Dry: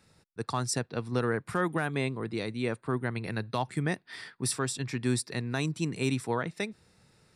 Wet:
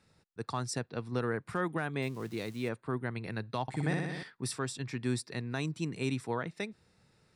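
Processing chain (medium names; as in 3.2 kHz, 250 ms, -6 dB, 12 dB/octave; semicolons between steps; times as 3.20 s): 2.02–2.69 s: zero-crossing glitches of -35 dBFS; treble shelf 10 kHz -10 dB; 3.62–4.23 s: flutter echo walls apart 10.4 m, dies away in 1.4 s; trim -4 dB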